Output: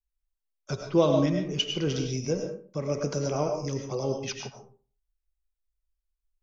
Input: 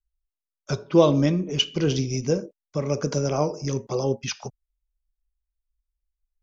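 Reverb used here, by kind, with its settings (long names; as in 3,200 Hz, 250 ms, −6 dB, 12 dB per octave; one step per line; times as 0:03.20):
comb and all-pass reverb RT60 0.41 s, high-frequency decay 0.6×, pre-delay 65 ms, DRR 3.5 dB
level −5.5 dB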